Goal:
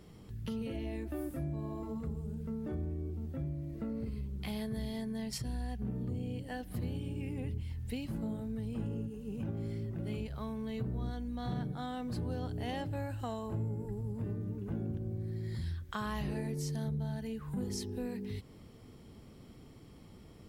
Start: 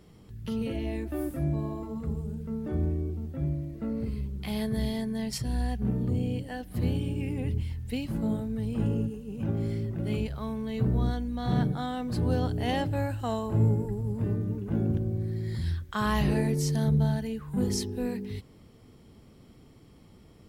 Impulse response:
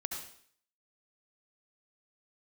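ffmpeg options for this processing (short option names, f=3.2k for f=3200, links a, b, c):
-af "acompressor=threshold=-37dB:ratio=3"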